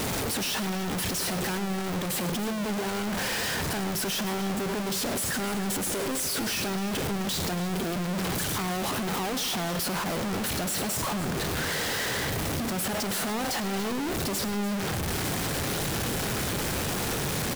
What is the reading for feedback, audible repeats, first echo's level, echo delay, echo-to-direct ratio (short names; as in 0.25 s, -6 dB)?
no steady repeat, 2, -13.5 dB, 0.103 s, -10.5 dB